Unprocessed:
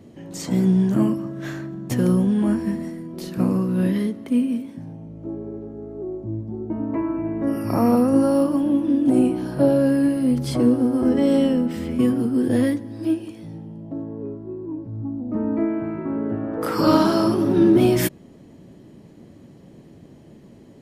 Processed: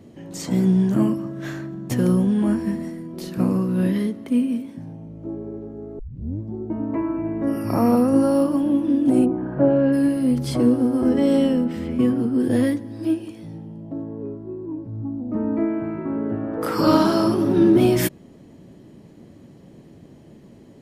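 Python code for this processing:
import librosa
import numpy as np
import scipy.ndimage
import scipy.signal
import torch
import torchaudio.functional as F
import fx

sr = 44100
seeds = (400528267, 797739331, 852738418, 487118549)

y = fx.lowpass(x, sr, hz=fx.line((9.24, 1300.0), (9.92, 3400.0)), slope=24, at=(9.24, 9.92), fade=0.02)
y = fx.high_shelf(y, sr, hz=4900.0, db=-8.5, at=(11.64, 12.4))
y = fx.edit(y, sr, fx.tape_start(start_s=5.99, length_s=0.4), tone=tone)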